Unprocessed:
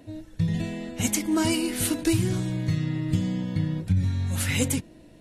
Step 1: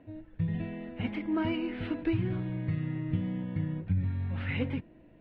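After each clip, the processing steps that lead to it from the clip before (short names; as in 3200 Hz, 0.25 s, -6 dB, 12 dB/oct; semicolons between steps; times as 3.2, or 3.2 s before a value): inverse Chebyshev low-pass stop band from 6500 Hz, stop band 50 dB; gain -6 dB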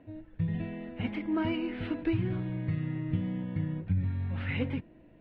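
nothing audible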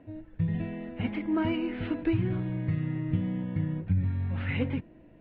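air absorption 120 m; gain +2.5 dB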